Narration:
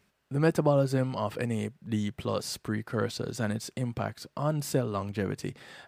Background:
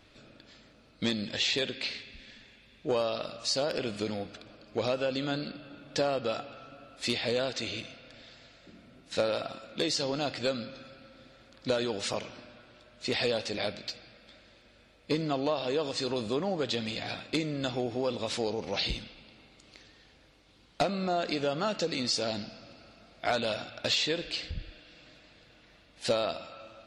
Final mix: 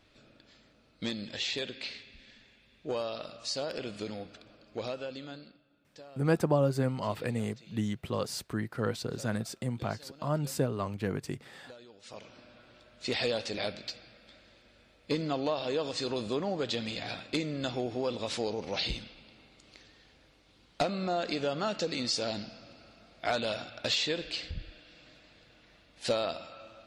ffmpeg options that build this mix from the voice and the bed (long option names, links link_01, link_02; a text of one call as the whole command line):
ffmpeg -i stem1.wav -i stem2.wav -filter_complex "[0:a]adelay=5850,volume=-2dB[link_01];[1:a]volume=15.5dB,afade=type=out:start_time=4.66:duration=0.99:silence=0.141254,afade=type=in:start_time=12.02:duration=0.67:silence=0.0944061[link_02];[link_01][link_02]amix=inputs=2:normalize=0" out.wav